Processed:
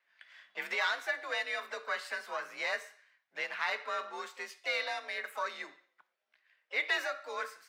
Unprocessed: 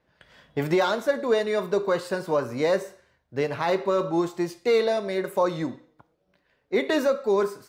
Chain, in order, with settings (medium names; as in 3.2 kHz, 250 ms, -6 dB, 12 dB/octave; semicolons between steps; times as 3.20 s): tilt EQ -2.5 dB/octave; harmony voices +5 st -15 dB; frequency shift +47 Hz; resonant high-pass 1.9 kHz, resonance Q 1.6; trim -1 dB